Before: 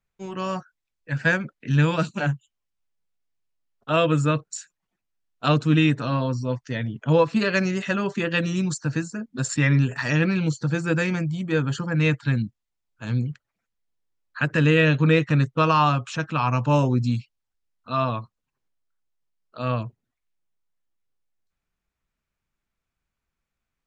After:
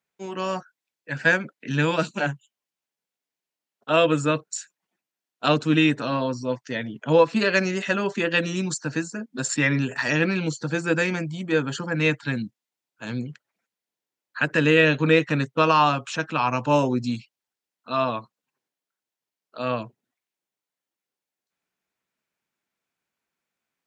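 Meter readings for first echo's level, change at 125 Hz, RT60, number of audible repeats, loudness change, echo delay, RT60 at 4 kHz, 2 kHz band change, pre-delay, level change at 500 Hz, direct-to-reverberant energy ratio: no echo audible, −6.5 dB, no reverb audible, no echo audible, 0.0 dB, no echo audible, no reverb audible, +2.5 dB, no reverb audible, +2.0 dB, no reverb audible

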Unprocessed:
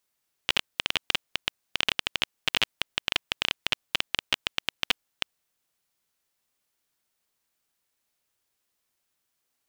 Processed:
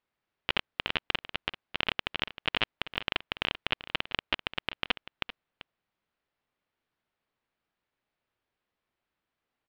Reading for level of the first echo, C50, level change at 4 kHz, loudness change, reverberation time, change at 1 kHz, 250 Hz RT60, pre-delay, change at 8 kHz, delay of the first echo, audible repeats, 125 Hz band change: −14.0 dB, no reverb audible, −5.0 dB, −4.0 dB, no reverb audible, +0.5 dB, no reverb audible, no reverb audible, below −20 dB, 389 ms, 1, +2.0 dB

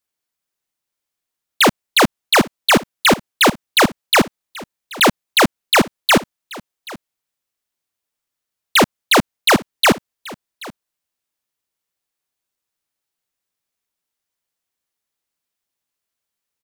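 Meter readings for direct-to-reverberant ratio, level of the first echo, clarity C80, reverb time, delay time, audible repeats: no reverb audible, −20.5 dB, no reverb audible, no reverb audible, 781 ms, 1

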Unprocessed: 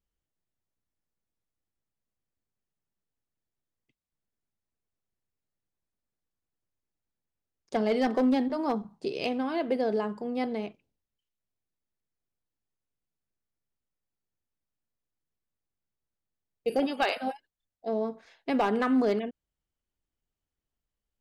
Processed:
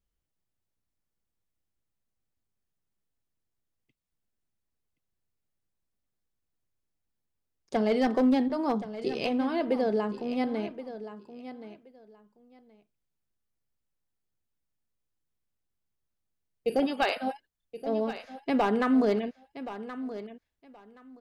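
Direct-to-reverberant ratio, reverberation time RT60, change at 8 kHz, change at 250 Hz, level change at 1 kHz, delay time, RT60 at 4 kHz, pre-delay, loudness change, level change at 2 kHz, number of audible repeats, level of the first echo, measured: no reverb audible, no reverb audible, can't be measured, +1.5 dB, +0.5 dB, 1,074 ms, no reverb audible, no reverb audible, +0.5 dB, +0.5 dB, 2, −13.0 dB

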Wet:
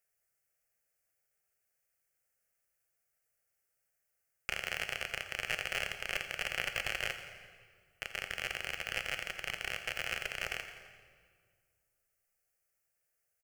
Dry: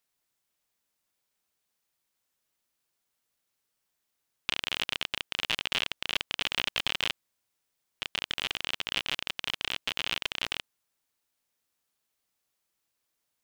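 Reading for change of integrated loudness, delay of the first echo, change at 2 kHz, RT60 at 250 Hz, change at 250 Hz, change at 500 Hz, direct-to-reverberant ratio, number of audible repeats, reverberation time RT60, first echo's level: −5.5 dB, 85 ms, −1.5 dB, 2.3 s, −9.0 dB, 0.0 dB, 6.5 dB, 4, 1.9 s, −13.0 dB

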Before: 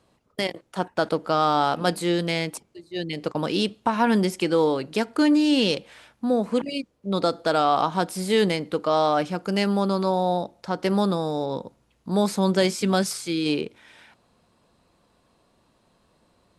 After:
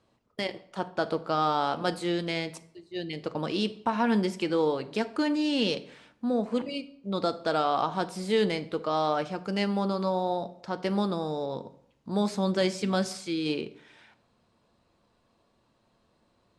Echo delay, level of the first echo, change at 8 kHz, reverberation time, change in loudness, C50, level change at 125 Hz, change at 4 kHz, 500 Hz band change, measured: no echo audible, no echo audible, −9.0 dB, 0.65 s, −5.5 dB, 17.0 dB, −5.5 dB, −5.5 dB, −5.0 dB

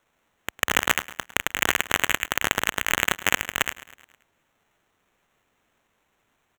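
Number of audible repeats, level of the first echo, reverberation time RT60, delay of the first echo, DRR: 4, −17.0 dB, no reverb audible, 106 ms, no reverb audible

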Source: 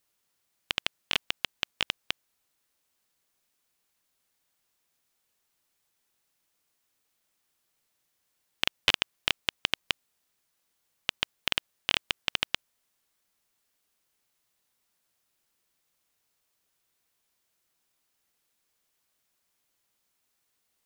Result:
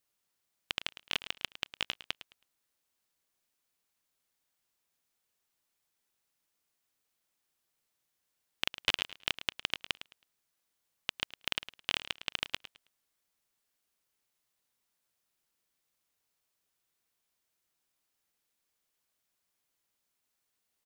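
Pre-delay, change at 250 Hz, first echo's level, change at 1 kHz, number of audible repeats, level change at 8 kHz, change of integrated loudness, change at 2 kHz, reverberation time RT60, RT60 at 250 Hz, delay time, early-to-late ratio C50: no reverb audible, −5.5 dB, −14.0 dB, −5.5 dB, 2, −5.5 dB, −5.5 dB, −5.5 dB, no reverb audible, no reverb audible, 107 ms, no reverb audible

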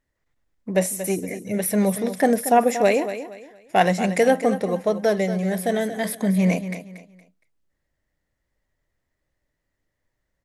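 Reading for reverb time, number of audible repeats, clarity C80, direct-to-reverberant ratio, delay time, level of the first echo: no reverb audible, 3, no reverb audible, no reverb audible, 233 ms, −11.5 dB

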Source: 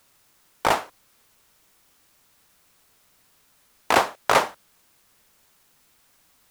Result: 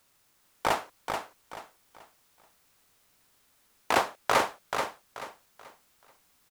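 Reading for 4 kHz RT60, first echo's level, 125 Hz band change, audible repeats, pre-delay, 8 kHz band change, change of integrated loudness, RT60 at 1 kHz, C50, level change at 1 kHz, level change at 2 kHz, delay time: no reverb audible, −6.0 dB, −5.0 dB, 3, no reverb audible, −5.0 dB, −7.5 dB, no reverb audible, no reverb audible, −5.0 dB, −5.0 dB, 433 ms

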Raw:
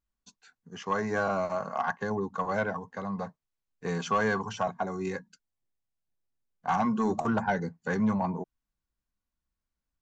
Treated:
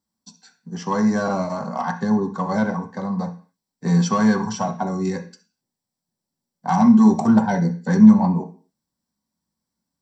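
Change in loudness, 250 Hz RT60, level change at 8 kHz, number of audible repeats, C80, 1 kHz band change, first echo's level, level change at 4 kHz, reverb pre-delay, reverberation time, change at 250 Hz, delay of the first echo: +11.5 dB, 0.45 s, can't be measured, no echo audible, 18.0 dB, +5.5 dB, no echo audible, +7.0 dB, 3 ms, 0.40 s, +16.0 dB, no echo audible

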